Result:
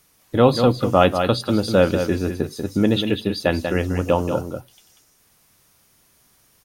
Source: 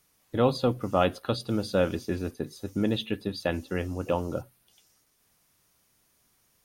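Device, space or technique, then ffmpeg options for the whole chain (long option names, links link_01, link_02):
ducked delay: -filter_complex "[0:a]asplit=3[link_01][link_02][link_03];[link_02]adelay=190,volume=-6.5dB[link_04];[link_03]apad=whole_len=301413[link_05];[link_04][link_05]sidechaincompress=threshold=-28dB:ratio=8:attack=16:release=150[link_06];[link_01][link_06]amix=inputs=2:normalize=0,volume=8.5dB"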